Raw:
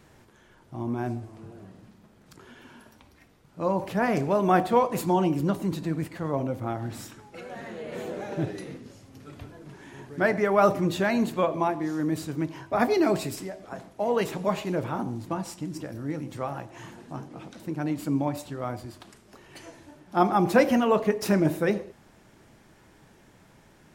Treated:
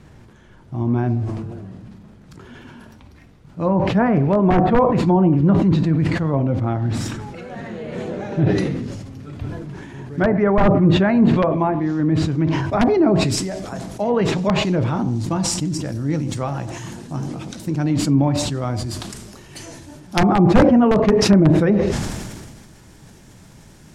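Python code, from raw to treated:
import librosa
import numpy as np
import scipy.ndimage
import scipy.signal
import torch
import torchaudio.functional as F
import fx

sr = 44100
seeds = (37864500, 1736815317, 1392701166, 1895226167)

y = fx.high_shelf(x, sr, hz=9300.0, db=-11.0)
y = (np.mod(10.0 ** (12.0 / 20.0) * y + 1.0, 2.0) - 1.0) / 10.0 ** (12.0 / 20.0)
y = fx.env_lowpass_down(y, sr, base_hz=1100.0, full_db=-18.5)
y = fx.bass_treble(y, sr, bass_db=9, treble_db=fx.steps((0.0, 1.0), (12.71, 14.0)))
y = fx.sustainer(y, sr, db_per_s=32.0)
y = F.gain(torch.from_numpy(y), 4.5).numpy()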